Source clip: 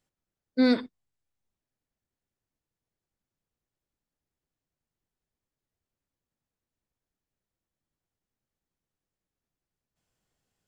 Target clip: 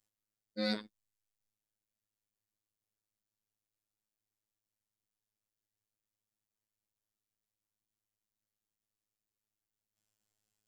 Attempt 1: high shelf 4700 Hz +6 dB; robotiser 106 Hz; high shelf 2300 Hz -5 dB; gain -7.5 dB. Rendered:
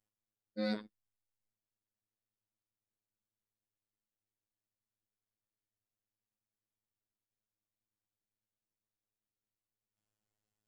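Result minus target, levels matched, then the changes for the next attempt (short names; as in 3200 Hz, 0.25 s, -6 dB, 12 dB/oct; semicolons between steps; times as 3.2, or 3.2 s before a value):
4000 Hz band -6.0 dB
change: second high shelf 2300 Hz +5 dB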